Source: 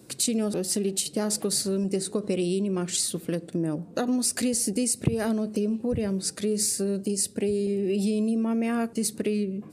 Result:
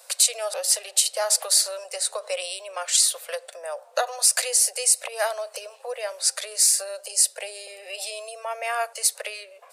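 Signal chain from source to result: steep high-pass 540 Hz 72 dB/oct; gain +8 dB

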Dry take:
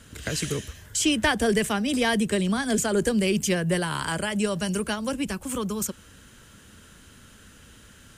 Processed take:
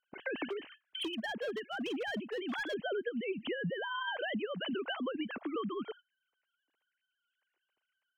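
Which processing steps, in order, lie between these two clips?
sine-wave speech; gate -48 dBFS, range -25 dB; dynamic EQ 300 Hz, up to -5 dB, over -31 dBFS, Q 1.3; compressor 12:1, threshold -33 dBFS, peak gain reduction 17 dB; 0.44–2.74 overloaded stage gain 33 dB

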